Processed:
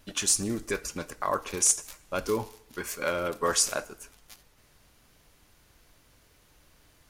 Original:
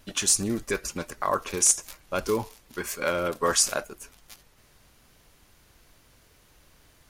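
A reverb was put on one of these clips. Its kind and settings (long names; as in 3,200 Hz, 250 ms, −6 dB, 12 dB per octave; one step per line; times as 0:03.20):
feedback delay network reverb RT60 0.72 s, low-frequency decay 0.8×, high-frequency decay 0.95×, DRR 16 dB
level −2.5 dB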